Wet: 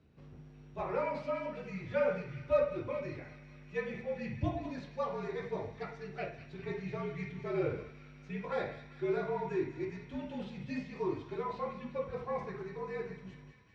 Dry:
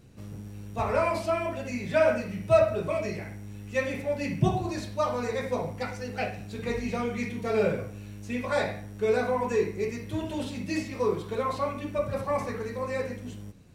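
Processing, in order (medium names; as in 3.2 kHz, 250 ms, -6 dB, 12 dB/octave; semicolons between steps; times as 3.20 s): frequency shift -56 Hz; high-pass 88 Hz 12 dB/octave; distance through air 220 m; feedback echo behind a high-pass 198 ms, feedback 71%, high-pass 2 kHz, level -9.5 dB; trim -7.5 dB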